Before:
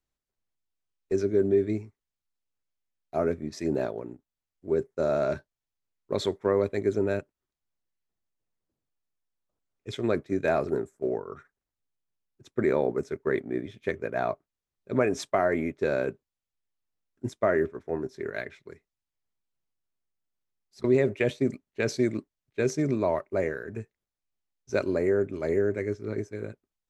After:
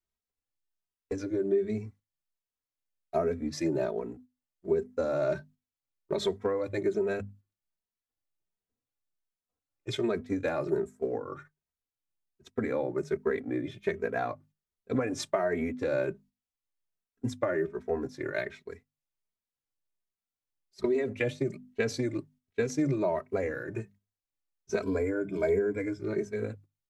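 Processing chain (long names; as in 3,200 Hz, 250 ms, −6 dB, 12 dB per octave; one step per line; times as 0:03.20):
mains-hum notches 50/100/150/200/250 Hz
noise gate −53 dBFS, range −8 dB
0:24.82–0:26.00: EQ curve with evenly spaced ripples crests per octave 1.7, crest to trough 12 dB
downward compressor, threshold −28 dBFS, peak gain reduction 10 dB
barber-pole flanger 2.8 ms +1.3 Hz
level +5.5 dB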